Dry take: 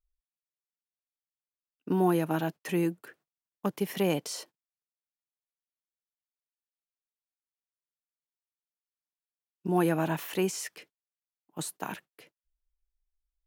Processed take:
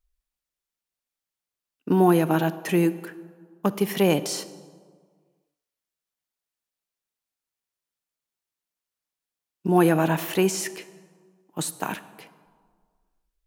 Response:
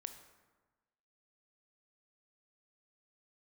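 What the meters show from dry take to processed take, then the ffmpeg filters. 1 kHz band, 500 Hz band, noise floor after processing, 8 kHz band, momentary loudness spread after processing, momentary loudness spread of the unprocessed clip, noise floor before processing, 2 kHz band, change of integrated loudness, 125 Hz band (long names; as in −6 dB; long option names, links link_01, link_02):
+7.0 dB, +7.5 dB, below −85 dBFS, +7.0 dB, 19 LU, 14 LU, below −85 dBFS, +7.0 dB, +7.0 dB, +7.0 dB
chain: -filter_complex "[0:a]asplit=2[link_01][link_02];[1:a]atrim=start_sample=2205,asetrate=30870,aresample=44100[link_03];[link_02][link_03]afir=irnorm=-1:irlink=0,volume=-0.5dB[link_04];[link_01][link_04]amix=inputs=2:normalize=0,volume=2.5dB"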